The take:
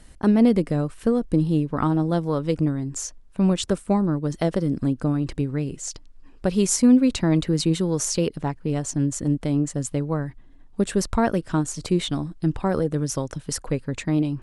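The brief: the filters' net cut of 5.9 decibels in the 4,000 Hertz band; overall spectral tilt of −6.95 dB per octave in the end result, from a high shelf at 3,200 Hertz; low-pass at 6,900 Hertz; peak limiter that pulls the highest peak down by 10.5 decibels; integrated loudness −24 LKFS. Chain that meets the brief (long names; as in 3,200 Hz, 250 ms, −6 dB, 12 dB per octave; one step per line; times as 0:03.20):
low-pass filter 6,900 Hz
high-shelf EQ 3,200 Hz −4.5 dB
parametric band 4,000 Hz −3.5 dB
level +4.5 dB
brickwall limiter −13.5 dBFS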